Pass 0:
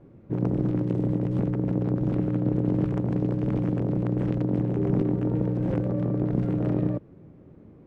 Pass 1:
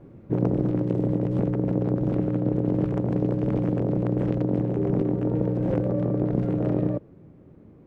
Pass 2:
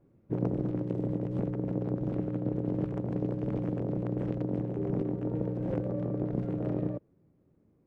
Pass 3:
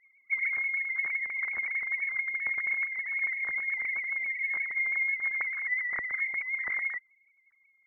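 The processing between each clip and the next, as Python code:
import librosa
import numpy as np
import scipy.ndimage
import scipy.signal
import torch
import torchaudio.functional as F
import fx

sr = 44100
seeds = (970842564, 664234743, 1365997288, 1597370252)

y1 = fx.dynamic_eq(x, sr, hz=540.0, q=1.2, threshold_db=-40.0, ratio=4.0, max_db=5)
y1 = fx.rider(y1, sr, range_db=5, speed_s=0.5)
y2 = fx.upward_expand(y1, sr, threshold_db=-42.0, expansion=1.5)
y2 = y2 * 10.0 ** (-5.5 / 20.0)
y3 = fx.sine_speech(y2, sr)
y3 = fx.freq_invert(y3, sr, carrier_hz=2500)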